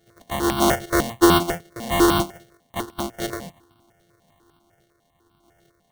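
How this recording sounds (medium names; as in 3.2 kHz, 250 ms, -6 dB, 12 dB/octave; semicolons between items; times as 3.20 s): a buzz of ramps at a fixed pitch in blocks of 128 samples; random-step tremolo; aliases and images of a low sample rate 2.5 kHz, jitter 0%; notches that jump at a steady rate 10 Hz 270–1900 Hz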